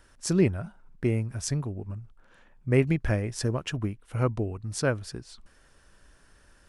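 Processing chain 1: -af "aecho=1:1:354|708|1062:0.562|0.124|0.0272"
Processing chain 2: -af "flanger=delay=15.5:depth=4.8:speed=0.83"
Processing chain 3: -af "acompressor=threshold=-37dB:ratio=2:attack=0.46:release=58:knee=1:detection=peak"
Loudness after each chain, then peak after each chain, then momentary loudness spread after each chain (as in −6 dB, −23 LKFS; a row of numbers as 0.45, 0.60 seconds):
−28.0, −32.0, −38.0 LKFS; −9.0, −14.0, −22.0 dBFS; 16, 13, 11 LU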